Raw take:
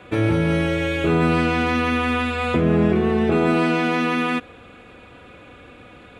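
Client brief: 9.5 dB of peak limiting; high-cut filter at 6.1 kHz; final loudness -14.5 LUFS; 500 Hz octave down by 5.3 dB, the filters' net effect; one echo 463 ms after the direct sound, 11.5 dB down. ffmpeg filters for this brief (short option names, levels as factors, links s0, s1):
-af "lowpass=6100,equalizer=f=500:t=o:g=-7,alimiter=limit=0.133:level=0:latency=1,aecho=1:1:463:0.266,volume=3.55"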